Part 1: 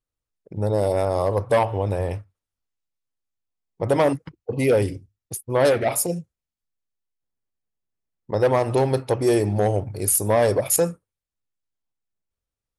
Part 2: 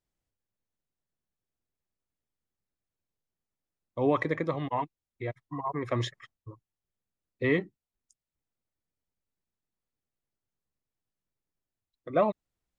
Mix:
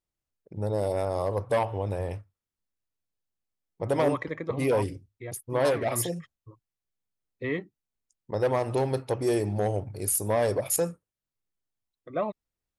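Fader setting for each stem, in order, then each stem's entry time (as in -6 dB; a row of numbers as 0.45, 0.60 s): -6.5, -4.5 dB; 0.00, 0.00 s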